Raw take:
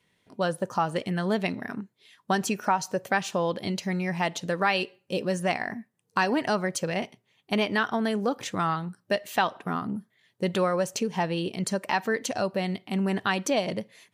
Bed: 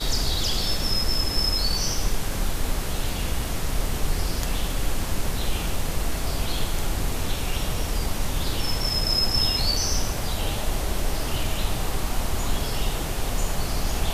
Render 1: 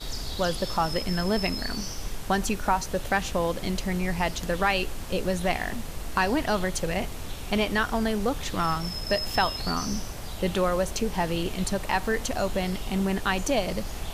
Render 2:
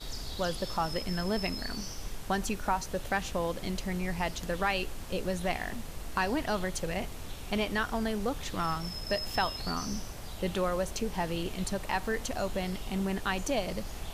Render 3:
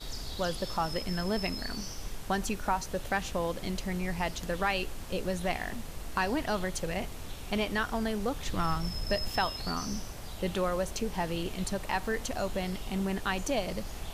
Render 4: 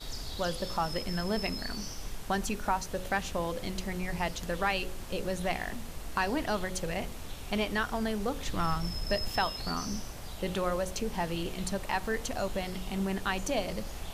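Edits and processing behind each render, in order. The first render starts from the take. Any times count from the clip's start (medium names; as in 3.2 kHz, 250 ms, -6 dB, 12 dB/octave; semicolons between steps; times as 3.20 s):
add bed -9.5 dB
trim -5.5 dB
8.46–9.28 s: bass shelf 150 Hz +7 dB
de-hum 46.1 Hz, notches 12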